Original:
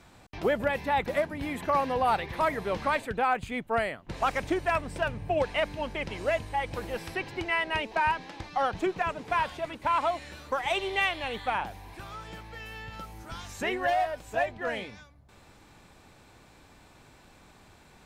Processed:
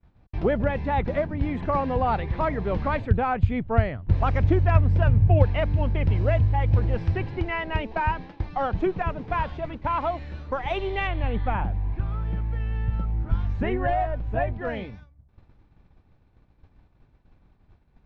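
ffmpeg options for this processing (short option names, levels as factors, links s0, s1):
-filter_complex "[0:a]asettb=1/sr,asplit=3[s0][s1][s2];[s0]atrim=end=2.934[s3];[s1]atrim=start=2.93:end=7.26,asetpts=PTS-STARTPTS,afade=t=in:d=0.004:c=qsin,afade=t=out:st=4.326:d=0.004:c=qsin,equalizer=f=92:w=1.5:g=11.5[s4];[s2]atrim=start=7.256[s5];[s3][s4]acrossfade=d=0.004:c1=hsin:c2=qsin[s6];[s6][s5]acrossfade=d=0.004:c1=qsin:c2=hsin,asettb=1/sr,asplit=3[s7][s8][s9];[s7]atrim=end=11.074[s10];[s8]atrim=start=11.07:end=14.53,asetpts=PTS-STARTPTS,afade=t=in:d=0.004:c=qsin,afade=t=out:st=3.456:d=0.004:c=qsin,bass=f=250:g=6,treble=f=4000:g=-12[s11];[s9]atrim=start=14.526[s12];[s10][s11]acrossfade=d=0.004:c1=hsin:c2=qsin[s13];[s13][s12]acrossfade=d=0.004:c1=qsin:c2=hsin,lowpass=f=5900:w=0.5412,lowpass=f=5900:w=1.3066,aemphasis=mode=reproduction:type=riaa,agate=range=0.0224:threshold=0.02:ratio=3:detection=peak"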